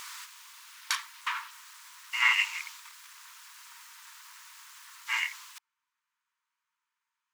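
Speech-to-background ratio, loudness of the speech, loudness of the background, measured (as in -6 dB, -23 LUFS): 6.0 dB, -28.5 LUFS, -34.5 LUFS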